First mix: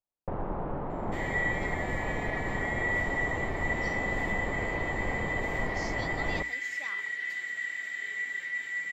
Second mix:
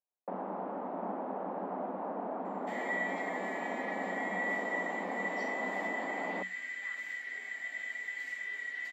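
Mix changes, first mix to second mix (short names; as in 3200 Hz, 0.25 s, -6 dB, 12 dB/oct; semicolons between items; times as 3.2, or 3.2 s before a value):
speech: add band-pass 1700 Hz, Q 3; second sound: entry +1.55 s; master: add rippled Chebyshev high-pass 180 Hz, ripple 6 dB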